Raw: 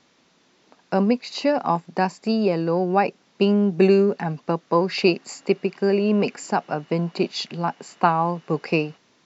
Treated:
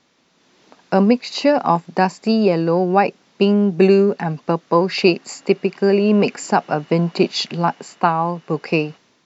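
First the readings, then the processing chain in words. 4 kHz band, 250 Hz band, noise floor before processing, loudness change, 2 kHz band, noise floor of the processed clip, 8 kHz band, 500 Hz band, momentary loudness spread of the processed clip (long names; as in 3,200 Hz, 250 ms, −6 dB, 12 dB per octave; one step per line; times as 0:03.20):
+5.0 dB, +4.5 dB, −61 dBFS, +4.5 dB, +4.5 dB, −60 dBFS, can't be measured, +4.5 dB, 7 LU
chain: automatic gain control
level −1 dB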